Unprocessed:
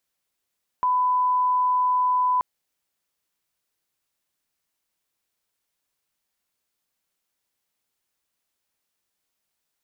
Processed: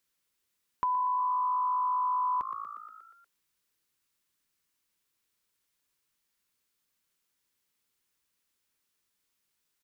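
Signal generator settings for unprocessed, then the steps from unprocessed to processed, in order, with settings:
line-up tone -18 dBFS 1.58 s
peaking EQ 690 Hz -10 dB 0.52 oct; on a send: frequency-shifting echo 119 ms, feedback 63%, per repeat +55 Hz, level -13.5 dB; on the sum: compression, threshold -27 dBFS

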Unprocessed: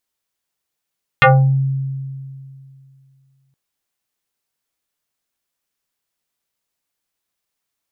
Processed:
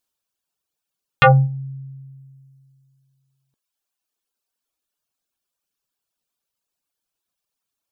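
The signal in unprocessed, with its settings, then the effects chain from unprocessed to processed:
FM tone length 2.32 s, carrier 135 Hz, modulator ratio 4.87, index 4.4, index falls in 0.38 s exponential, decay 2.53 s, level -5 dB
reverb removal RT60 1.7 s; peaking EQ 2 kHz -9.5 dB 0.24 oct

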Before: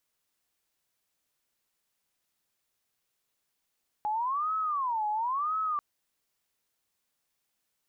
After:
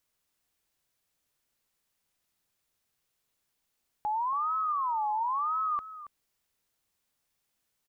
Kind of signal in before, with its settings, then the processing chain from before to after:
siren wail 841–1290 Hz 0.97 per s sine -27 dBFS 1.74 s
bass shelf 150 Hz +6 dB; delay 277 ms -14 dB

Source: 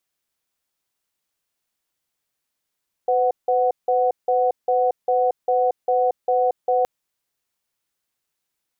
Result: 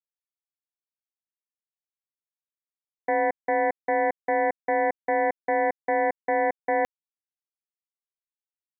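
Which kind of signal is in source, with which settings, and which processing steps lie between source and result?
cadence 505 Hz, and 740 Hz, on 0.23 s, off 0.17 s, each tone -18.5 dBFS 3.77 s
power-law waveshaper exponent 3

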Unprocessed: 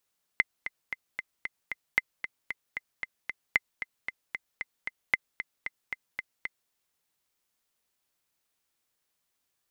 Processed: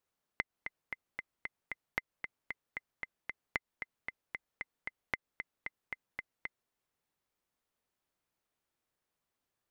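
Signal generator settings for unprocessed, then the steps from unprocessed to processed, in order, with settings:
metronome 228 bpm, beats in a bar 6, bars 4, 2.06 kHz, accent 11 dB -8.5 dBFS
treble shelf 2.2 kHz -11.5 dB; compression 4:1, threshold -32 dBFS

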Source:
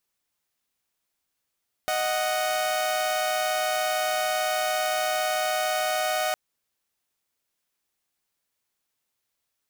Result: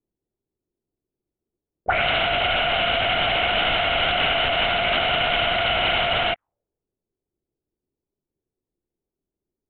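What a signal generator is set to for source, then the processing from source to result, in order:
chord D#5/F#5 saw, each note -24 dBFS 4.46 s
in parallel at -6 dB: saturation -28 dBFS; on the sum: LPC vocoder at 8 kHz whisper; touch-sensitive low-pass 370–3000 Hz up, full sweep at -20.5 dBFS

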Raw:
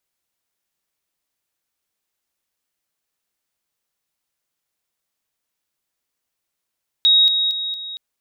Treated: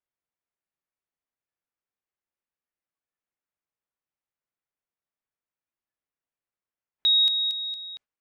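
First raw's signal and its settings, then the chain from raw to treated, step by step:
level ladder 3.78 kHz -10 dBFS, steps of -6 dB, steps 4, 0.23 s 0.00 s
spectral noise reduction 10 dB; level-controlled noise filter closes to 2.6 kHz, open at -20 dBFS; peaking EQ 4 kHz -6.5 dB 0.77 oct

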